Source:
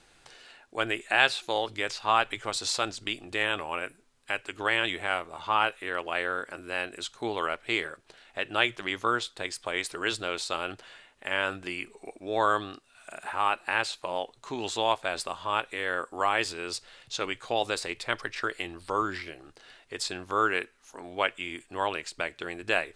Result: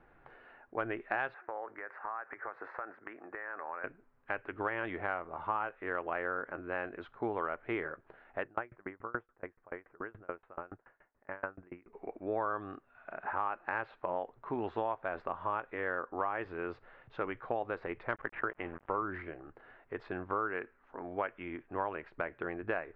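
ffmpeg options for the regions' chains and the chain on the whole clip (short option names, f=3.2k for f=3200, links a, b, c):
-filter_complex "[0:a]asettb=1/sr,asplit=3[a][b][c];[a]atrim=end=1.344[d];[b]atrim=start=1.34:end=3.84,asetpts=PTS-STARTPTS,afade=t=in:d=0.004:c=qsin,afade=t=out:st=2.496:d=0.004:c=qsin,highpass=420,highshelf=f=2.5k:t=q:w=3:g=-12,acompressor=threshold=-35dB:ratio=8:attack=3.2:release=140:knee=1:detection=peak[e];[c]atrim=start=3.836[f];[d][e]acrossfade=d=0.004:c1=hsin:c2=qsin[g];[g][f]acrossfade=d=0.004:c1=qsin:c2=hsin,asettb=1/sr,asplit=3[h][i][j];[h]atrim=end=8.434[k];[i]atrim=start=8.43:end=11.93,asetpts=PTS-STARTPTS,afade=t=in:d=0.004:c=qsin,afade=t=out:st=3.496:d=0.004:c=qsin,asuperstop=centerf=4900:order=4:qfactor=0.62,aeval=exprs='val(0)*pow(10,-32*if(lt(mod(7*n/s,1),2*abs(7)/1000),1-mod(7*n/s,1)/(2*abs(7)/1000),(mod(7*n/s,1)-2*abs(7)/1000)/(1-2*abs(7)/1000))/20)':c=same[l];[j]atrim=start=11.926[m];[k][l]acrossfade=d=0.004:c1=hsin:c2=qsin[n];[n][m]acrossfade=d=0.004:c1=qsin:c2=hsin,asettb=1/sr,asplit=3[o][p][q];[o]atrim=end=18.154[r];[p]atrim=start=18.15:end=19.04,asetpts=PTS-STARTPTS,afade=t=in:d=0.004:c=qsin,afade=t=out:st=0.886:d=0.004:c=qsin,highshelf=f=4.6k:g=12,aeval=exprs='val(0)*gte(abs(val(0)),0.0112)':c=same,asuperstop=centerf=5300:order=4:qfactor=0.92[s];[q]atrim=start=19.036[t];[r][s]acrossfade=d=0.004:c1=hsin:c2=qsin[u];[u][t]acrossfade=d=0.004:c1=qsin:c2=hsin,lowpass=f=1.7k:w=0.5412,lowpass=f=1.7k:w=1.3066,acompressor=threshold=-30dB:ratio=6"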